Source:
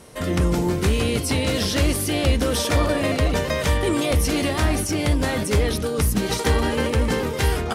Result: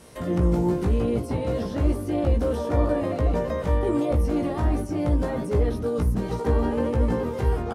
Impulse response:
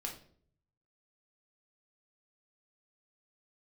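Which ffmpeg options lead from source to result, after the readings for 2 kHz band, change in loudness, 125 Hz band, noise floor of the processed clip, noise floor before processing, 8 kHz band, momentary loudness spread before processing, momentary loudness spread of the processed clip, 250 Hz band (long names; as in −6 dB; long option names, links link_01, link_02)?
−13.5 dB, −3.0 dB, −2.5 dB, −33 dBFS, −27 dBFS, −20.0 dB, 2 LU, 3 LU, −2.0 dB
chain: -filter_complex "[0:a]asplit=2[link_01][link_02];[link_02]adelay=17,volume=-4dB[link_03];[link_01][link_03]amix=inputs=2:normalize=0,acrossover=split=1200[link_04][link_05];[link_05]acompressor=threshold=-43dB:ratio=12[link_06];[link_04][link_06]amix=inputs=2:normalize=0,volume=-4dB"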